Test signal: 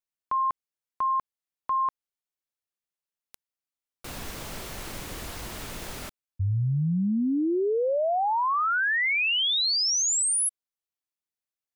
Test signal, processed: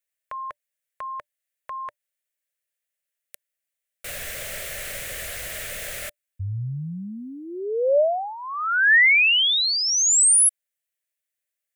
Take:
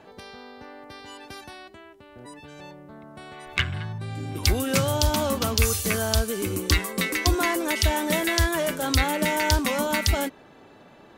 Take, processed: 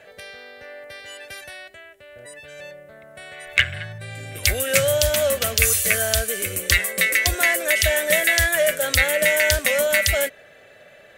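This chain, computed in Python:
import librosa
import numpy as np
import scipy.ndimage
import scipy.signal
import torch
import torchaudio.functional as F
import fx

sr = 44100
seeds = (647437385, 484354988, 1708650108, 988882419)

y = fx.curve_eq(x, sr, hz=(120.0, 310.0, 590.0, 930.0, 1800.0, 5000.0, 8200.0), db=(0, -10, 12, -9, 14, 4, 12))
y = F.gain(torch.from_numpy(y), -3.0).numpy()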